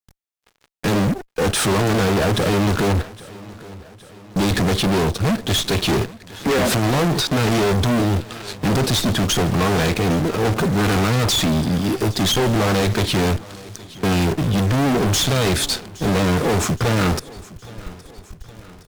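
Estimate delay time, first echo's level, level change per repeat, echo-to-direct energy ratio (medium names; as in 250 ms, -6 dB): 817 ms, -20.5 dB, -5.0 dB, -19.0 dB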